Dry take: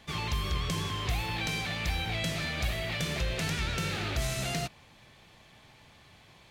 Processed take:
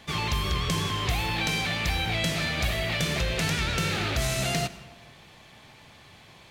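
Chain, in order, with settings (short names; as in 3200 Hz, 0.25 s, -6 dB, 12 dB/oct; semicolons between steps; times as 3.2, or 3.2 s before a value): low shelf 65 Hz -5.5 dB; on a send: reverb RT60 1.3 s, pre-delay 92 ms, DRR 15.5 dB; on the sum: gain +5.5 dB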